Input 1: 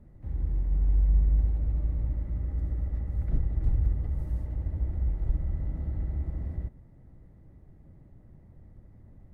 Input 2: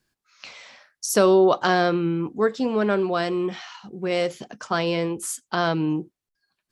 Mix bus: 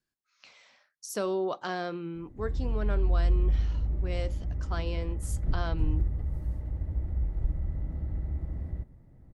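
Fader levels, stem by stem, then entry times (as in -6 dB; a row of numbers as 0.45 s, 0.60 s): -1.5 dB, -13.5 dB; 2.15 s, 0.00 s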